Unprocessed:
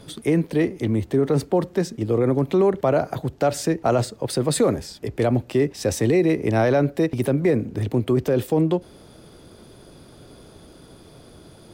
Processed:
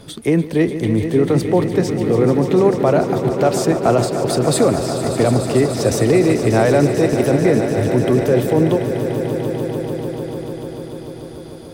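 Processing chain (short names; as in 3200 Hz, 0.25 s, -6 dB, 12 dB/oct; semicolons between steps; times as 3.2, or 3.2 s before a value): swelling echo 0.147 s, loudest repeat 5, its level -12 dB; gain +4 dB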